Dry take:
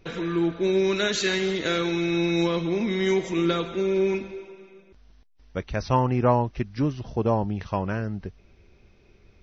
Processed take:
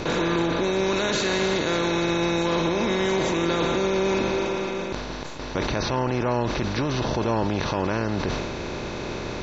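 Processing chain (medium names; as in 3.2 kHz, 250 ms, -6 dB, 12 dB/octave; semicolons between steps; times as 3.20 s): spectral levelling over time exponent 0.4; peak limiter -15 dBFS, peak gain reduction 9.5 dB; decay stretcher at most 30 dB/s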